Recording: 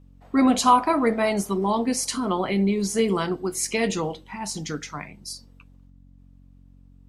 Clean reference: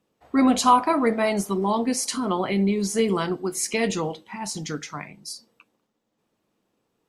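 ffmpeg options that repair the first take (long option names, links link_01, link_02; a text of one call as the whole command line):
ffmpeg -i in.wav -af "bandreject=frequency=45.8:width_type=h:width=4,bandreject=frequency=91.6:width_type=h:width=4,bandreject=frequency=137.4:width_type=h:width=4,bandreject=frequency=183.2:width_type=h:width=4,bandreject=frequency=229:width_type=h:width=4,bandreject=frequency=274.8:width_type=h:width=4,asetnsamples=nb_out_samples=441:pad=0,asendcmd='5.9 volume volume 3dB',volume=0dB" out.wav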